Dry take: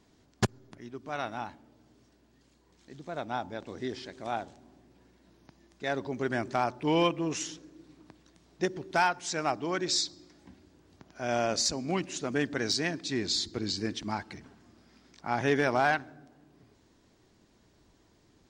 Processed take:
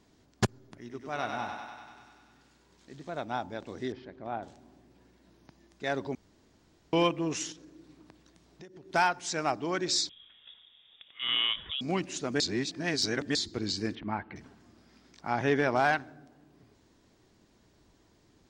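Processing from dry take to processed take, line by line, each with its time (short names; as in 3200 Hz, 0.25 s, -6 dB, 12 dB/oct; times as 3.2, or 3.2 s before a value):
0.8–3.1 thinning echo 97 ms, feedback 75%, level -4 dB
3.92–4.43 tape spacing loss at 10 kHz 37 dB
6.15–6.93 room tone
7.52–8.94 compressor, threshold -47 dBFS
10.09–11.81 inverted band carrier 3600 Hz
12.4–13.35 reverse
13.95–14.36 LPF 2600 Hz 24 dB/oct
15.31–15.75 high shelf 8300 Hz -> 5700 Hz -11.5 dB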